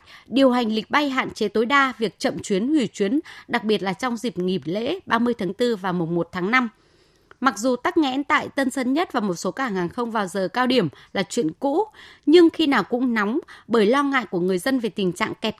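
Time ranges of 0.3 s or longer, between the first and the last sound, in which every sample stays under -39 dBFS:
6.69–7.31 s

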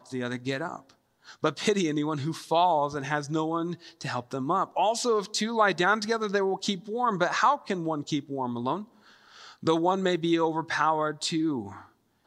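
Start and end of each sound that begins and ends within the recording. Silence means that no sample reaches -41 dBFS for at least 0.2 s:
1.28–8.84 s
9.34–11.82 s

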